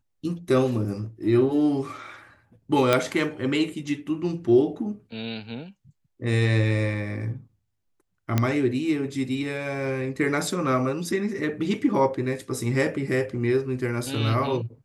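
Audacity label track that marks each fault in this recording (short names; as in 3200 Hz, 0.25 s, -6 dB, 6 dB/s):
2.930000	2.930000	pop -6 dBFS
8.380000	8.380000	pop -8 dBFS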